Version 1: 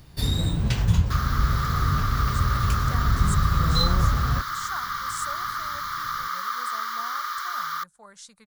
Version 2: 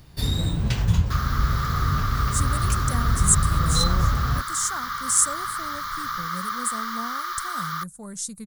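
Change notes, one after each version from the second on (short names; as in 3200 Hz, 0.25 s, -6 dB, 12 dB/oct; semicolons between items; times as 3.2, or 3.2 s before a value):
speech: remove three-band isolator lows -21 dB, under 590 Hz, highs -22 dB, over 4300 Hz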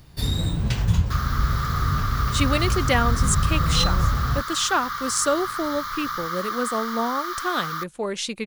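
speech: remove EQ curve 180 Hz 0 dB, 360 Hz -19 dB, 1500 Hz -11 dB, 2600 Hz -28 dB, 8100 Hz +8 dB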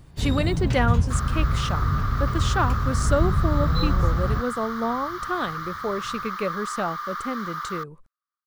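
speech: entry -2.15 s; master: add high shelf 2700 Hz -11.5 dB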